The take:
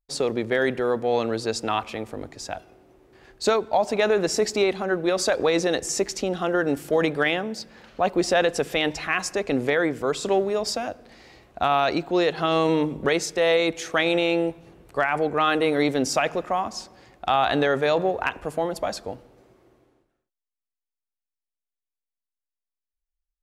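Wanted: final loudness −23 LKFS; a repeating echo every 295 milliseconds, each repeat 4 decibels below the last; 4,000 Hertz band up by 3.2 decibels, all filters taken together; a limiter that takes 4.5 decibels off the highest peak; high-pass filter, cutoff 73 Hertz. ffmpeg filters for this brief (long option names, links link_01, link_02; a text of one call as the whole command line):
ffmpeg -i in.wav -af "highpass=73,equalizer=frequency=4000:width_type=o:gain=4,alimiter=limit=-12.5dB:level=0:latency=1,aecho=1:1:295|590|885|1180|1475|1770|2065|2360|2655:0.631|0.398|0.25|0.158|0.0994|0.0626|0.0394|0.0249|0.0157" out.wav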